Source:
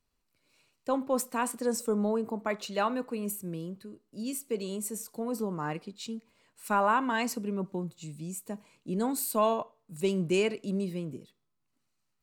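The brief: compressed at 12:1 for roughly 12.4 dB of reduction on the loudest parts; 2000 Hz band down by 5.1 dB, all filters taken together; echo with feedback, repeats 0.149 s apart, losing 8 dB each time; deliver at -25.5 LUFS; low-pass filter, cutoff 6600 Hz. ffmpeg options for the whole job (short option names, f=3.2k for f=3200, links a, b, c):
-af "lowpass=6.6k,equalizer=f=2k:t=o:g=-7.5,acompressor=threshold=-35dB:ratio=12,aecho=1:1:149|298|447|596|745:0.398|0.159|0.0637|0.0255|0.0102,volume=15dB"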